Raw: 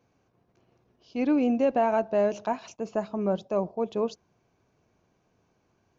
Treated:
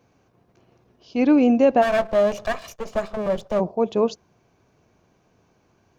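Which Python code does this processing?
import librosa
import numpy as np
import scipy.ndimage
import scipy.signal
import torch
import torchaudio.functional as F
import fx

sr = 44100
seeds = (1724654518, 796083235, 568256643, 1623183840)

y = fx.lower_of_two(x, sr, delay_ms=1.7, at=(1.81, 3.59), fade=0.02)
y = y * librosa.db_to_amplitude(7.5)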